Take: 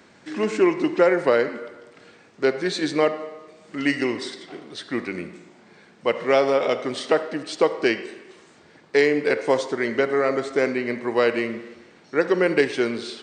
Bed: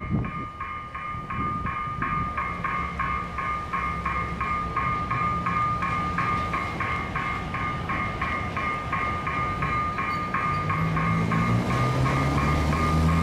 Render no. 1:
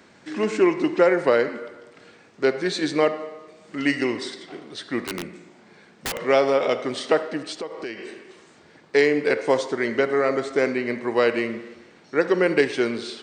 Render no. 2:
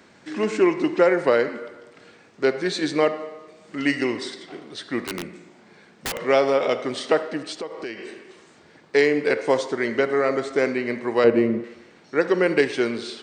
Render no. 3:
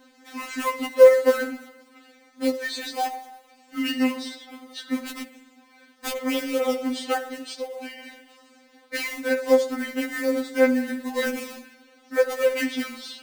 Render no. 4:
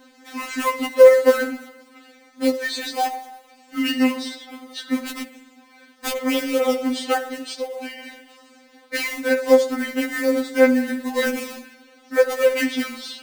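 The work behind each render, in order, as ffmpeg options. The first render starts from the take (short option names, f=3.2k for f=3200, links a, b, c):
-filter_complex "[0:a]asettb=1/sr,asplit=3[a][b][c];[a]atrim=end=5.054[d];[b]atrim=start=5.05:end=6.22,asetpts=PTS-STARTPTS,afade=t=in:d=0.004:c=qsin,afade=t=out:st=1.166:d=0.004:c=qsin,aeval=exprs='(mod(11.9*val(0)+1,2)-1)/11.9':c=same[e];[c]atrim=start=6.216[f];[d][e]acrossfade=d=0.004:c1=hsin:c2=qsin[g];[g][f]acrossfade=d=0.004:c1=qsin:c2=hsin,asettb=1/sr,asplit=3[h][i][j];[h]atrim=end=7.524[k];[i]atrim=start=7.52:end=8.06,asetpts=PTS-STARTPTS,afade=t=in:d=0.004:c=qsin,afade=t=out:st=0.536:d=0.004:c=qsin,acompressor=threshold=-32dB:ratio=3:attack=3.2:release=140:knee=1:detection=peak[l];[j]atrim=start=8.056[m];[k][l]acrossfade=d=0.004:c1=hsin:c2=qsin[n];[n][m]acrossfade=d=0.004:c1=qsin:c2=hsin"
-filter_complex "[0:a]asettb=1/sr,asplit=3[a][b][c];[a]atrim=end=11.244[d];[b]atrim=start=11.24:end=11.64,asetpts=PTS-STARTPTS,afade=t=in:d=0.004:c=qsin,afade=t=out:st=0.396:d=0.004:c=qsin,tiltshelf=f=940:g=9.5[e];[c]atrim=start=11.636[f];[d][e]acrossfade=d=0.004:c1=hsin:c2=qsin[g];[g][f]acrossfade=d=0.004:c1=qsin:c2=hsin"
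-filter_complex "[0:a]acrossover=split=4600[a][b];[a]acrusher=bits=4:mode=log:mix=0:aa=0.000001[c];[c][b]amix=inputs=2:normalize=0,afftfilt=real='re*3.46*eq(mod(b,12),0)':imag='im*3.46*eq(mod(b,12),0)':win_size=2048:overlap=0.75"
-af "volume=4dB,alimiter=limit=-1dB:level=0:latency=1"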